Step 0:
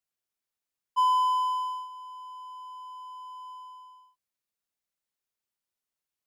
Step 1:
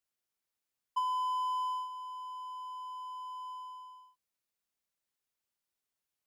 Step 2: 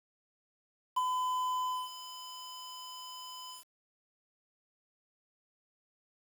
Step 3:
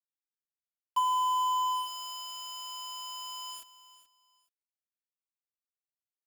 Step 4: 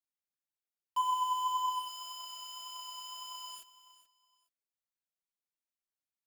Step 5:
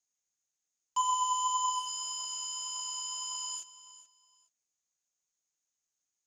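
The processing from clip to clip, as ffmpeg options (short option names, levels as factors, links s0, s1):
-af "acompressor=threshold=0.0316:ratio=12"
-af "aeval=exprs='val(0)*gte(abs(val(0)),0.01)':c=same"
-af "aecho=1:1:429|858:0.158|0.0365,volume=1.78"
-af "flanger=delay=2.8:depth=2.9:regen=53:speed=1.8:shape=triangular"
-af "lowpass=f=6600:t=q:w=12,volume=1.12"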